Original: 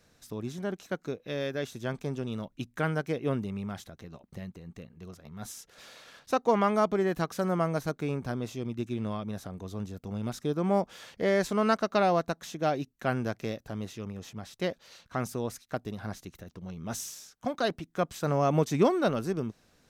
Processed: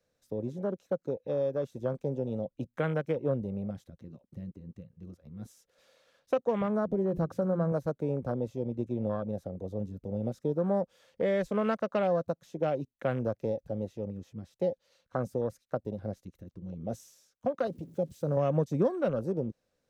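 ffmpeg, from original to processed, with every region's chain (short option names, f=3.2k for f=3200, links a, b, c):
-filter_complex "[0:a]asettb=1/sr,asplit=3[a][b][c];[a]atrim=end=6.614[d];[b]atrim=start=6.61:end=7.72,asetpts=PTS-STARTPTS,afade=t=in:d=0.004:c=qsin,afade=t=out:st=1.106:d=0.004:c=qsin,equalizer=f=87:t=o:w=2.9:g=11,acompressor=threshold=-30dB:ratio=1.5:attack=3.2:release=140:knee=1:detection=peak,bandreject=f=60:t=h:w=6,bandreject=f=120:t=h:w=6,bandreject=f=180:t=h:w=6,bandreject=f=240:t=h:w=6,bandreject=f=300:t=h:w=6,bandreject=f=360:t=h:w=6[e];[c]atrim=start=7.716[f];[d][e]acrossfade=d=0.004:c1=hsin:c2=qsin[g];[g][f]acrossfade=d=0.004:c1=qsin:c2=hsin,asettb=1/sr,asplit=3[h][i][j];[h]atrim=end=17.674[k];[i]atrim=start=17.67:end=18.37,asetpts=PTS-STARTPTS,afade=t=in:d=0.004:c=qsin,afade=t=out:st=0.696:d=0.004:c=qsin,aeval=exprs='val(0)+0.5*0.00841*sgn(val(0))':c=same,highpass=90,equalizer=f=1.1k:w=0.55:g=-12[l];[j]atrim=start=18.366[m];[k][l]acrossfade=d=0.004:c1=hsin:c2=qsin[n];[n][m]acrossfade=d=0.004:c1=qsin:c2=hsin,afwtdn=0.0158,equalizer=f=530:t=o:w=0.35:g=13,acrossover=split=200|3000[o][p][q];[p]acompressor=threshold=-29dB:ratio=3[r];[o][r][q]amix=inputs=3:normalize=0"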